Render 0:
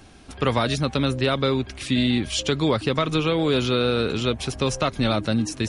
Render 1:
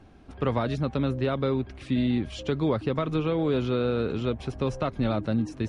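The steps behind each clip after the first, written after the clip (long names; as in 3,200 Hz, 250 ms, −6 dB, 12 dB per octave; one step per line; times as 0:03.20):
low-pass filter 1,000 Hz 6 dB per octave
level −3 dB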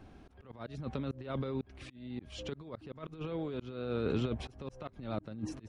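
compressor whose output falls as the input rises −28 dBFS, ratio −0.5
volume swells 318 ms
tape wow and flutter 25 cents
level −5 dB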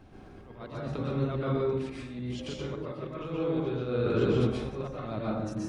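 dense smooth reverb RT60 0.99 s, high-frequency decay 0.5×, pre-delay 110 ms, DRR −6 dB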